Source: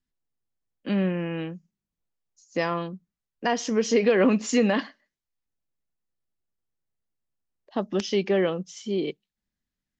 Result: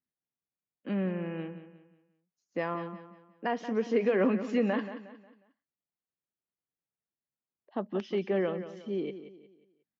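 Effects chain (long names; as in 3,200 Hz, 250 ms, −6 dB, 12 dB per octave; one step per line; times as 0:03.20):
band-pass filter 120–2,200 Hz
repeating echo 180 ms, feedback 37%, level −12 dB
level −6 dB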